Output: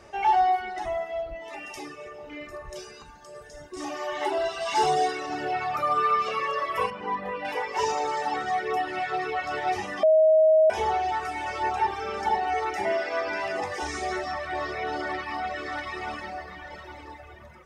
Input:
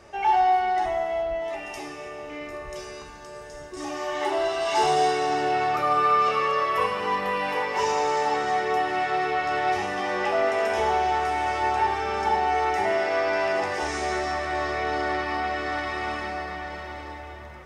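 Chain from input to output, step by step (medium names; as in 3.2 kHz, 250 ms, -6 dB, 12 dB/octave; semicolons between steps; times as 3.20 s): reverb removal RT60 2 s; 6.90–7.45 s: low-pass 1.3 kHz 6 dB/octave; 10.03–10.70 s: bleep 631 Hz -14.5 dBFS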